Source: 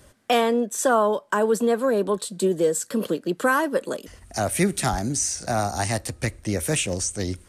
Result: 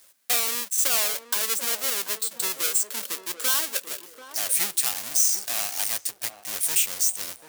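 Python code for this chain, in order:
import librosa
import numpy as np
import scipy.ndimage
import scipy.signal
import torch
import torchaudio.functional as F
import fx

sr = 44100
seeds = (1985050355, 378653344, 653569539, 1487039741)

y = fx.halfwave_hold(x, sr)
y = np.diff(y, prepend=0.0)
y = fx.echo_banded(y, sr, ms=737, feedback_pct=44, hz=430.0, wet_db=-8)
y = F.gain(torch.from_numpy(y), 1.5).numpy()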